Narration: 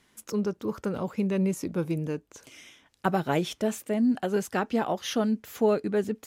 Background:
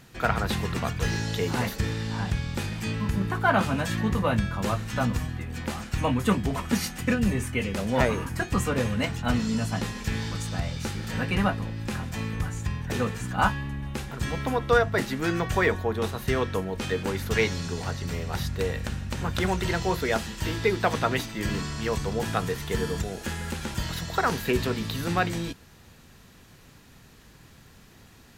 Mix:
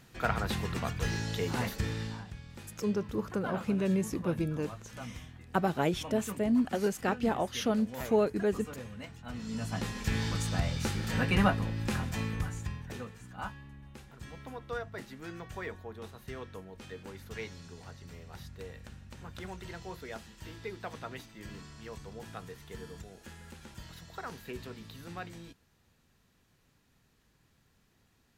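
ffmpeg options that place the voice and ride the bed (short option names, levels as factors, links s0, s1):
-filter_complex "[0:a]adelay=2500,volume=0.708[s0];[1:a]volume=3.55,afade=t=out:st=2.03:d=0.21:silence=0.251189,afade=t=in:st=9.32:d=0.93:silence=0.149624,afade=t=out:st=11.98:d=1.09:silence=0.158489[s1];[s0][s1]amix=inputs=2:normalize=0"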